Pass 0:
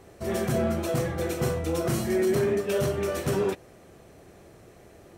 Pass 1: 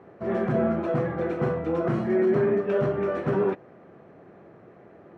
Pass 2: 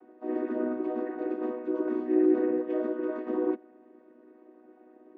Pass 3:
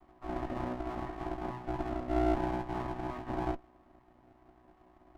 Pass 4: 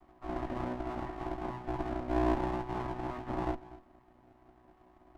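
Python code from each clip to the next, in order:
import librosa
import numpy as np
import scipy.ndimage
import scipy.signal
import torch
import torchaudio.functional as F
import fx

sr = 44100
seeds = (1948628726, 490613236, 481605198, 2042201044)

y1 = scipy.signal.sosfilt(scipy.signal.cheby1(2, 1.0, [160.0, 1500.0], 'bandpass', fs=sr, output='sos'), x)
y1 = y1 * 10.0 ** (3.0 / 20.0)
y2 = fx.chord_vocoder(y1, sr, chord='major triad', root=59)
y2 = y2 * 10.0 ** (-3.5 / 20.0)
y3 = fx.lower_of_two(y2, sr, delay_ms=1.0)
y3 = y3 * 10.0 ** (-3.0 / 20.0)
y4 = y3 + 10.0 ** (-17.5 / 20.0) * np.pad(y3, (int(243 * sr / 1000.0), 0))[:len(y3)]
y4 = fx.doppler_dist(y4, sr, depth_ms=0.47)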